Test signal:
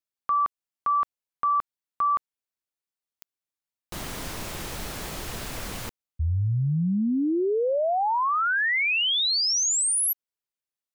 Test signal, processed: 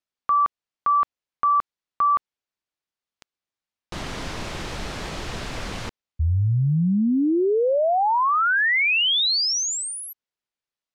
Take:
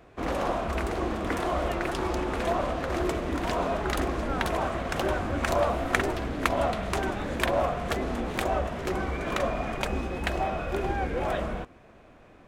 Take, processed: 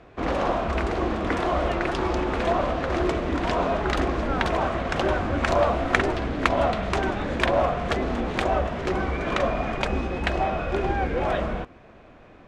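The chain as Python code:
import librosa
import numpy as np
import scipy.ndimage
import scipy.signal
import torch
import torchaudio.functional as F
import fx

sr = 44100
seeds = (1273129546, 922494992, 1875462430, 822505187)

y = scipy.signal.sosfilt(scipy.signal.butter(2, 5400.0, 'lowpass', fs=sr, output='sos'), x)
y = F.gain(torch.from_numpy(y), 4.0).numpy()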